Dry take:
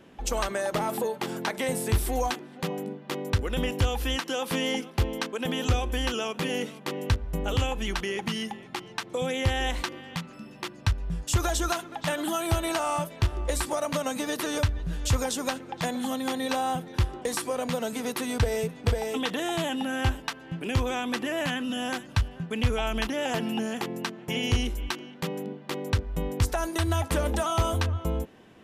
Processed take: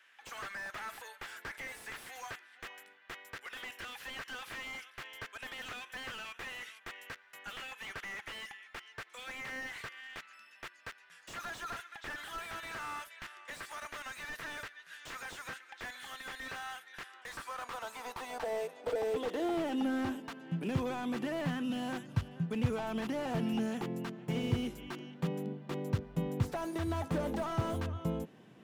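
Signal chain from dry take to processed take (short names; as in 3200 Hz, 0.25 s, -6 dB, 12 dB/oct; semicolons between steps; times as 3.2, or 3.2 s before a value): high-pass sweep 1700 Hz -> 140 Hz, 17.1–20.97; slew limiter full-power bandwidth 37 Hz; gain -6.5 dB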